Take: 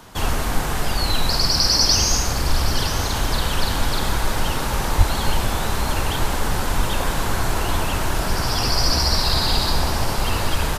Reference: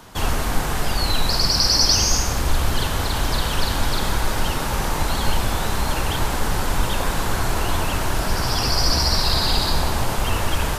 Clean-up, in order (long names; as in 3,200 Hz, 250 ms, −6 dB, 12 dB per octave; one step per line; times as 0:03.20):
0:04.97–0:05.09: high-pass filter 140 Hz 24 dB per octave
echo removal 962 ms −13.5 dB